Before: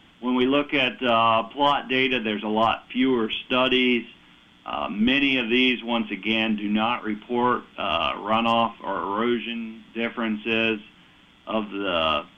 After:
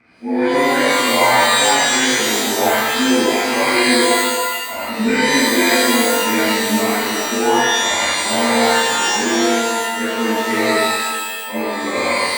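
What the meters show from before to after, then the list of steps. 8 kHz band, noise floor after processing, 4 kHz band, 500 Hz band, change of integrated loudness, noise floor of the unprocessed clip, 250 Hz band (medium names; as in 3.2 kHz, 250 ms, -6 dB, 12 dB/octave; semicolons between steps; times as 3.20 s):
no reading, -25 dBFS, +8.0 dB, +8.0 dB, +7.5 dB, -54 dBFS, +5.0 dB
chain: frequency axis rescaled in octaves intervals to 88%; high-pass 41 Hz; pitch-shifted reverb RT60 1.4 s, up +12 st, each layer -2 dB, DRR -7.5 dB; trim -3 dB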